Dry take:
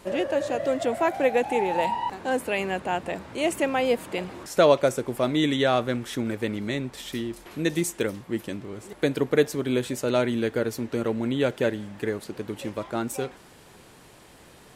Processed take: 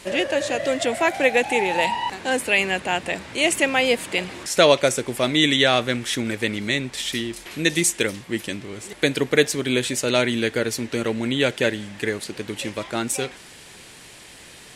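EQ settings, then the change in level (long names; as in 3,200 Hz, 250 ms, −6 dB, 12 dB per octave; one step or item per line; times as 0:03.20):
flat-topped bell 4,300 Hz +9.5 dB 2.9 octaves
+2.0 dB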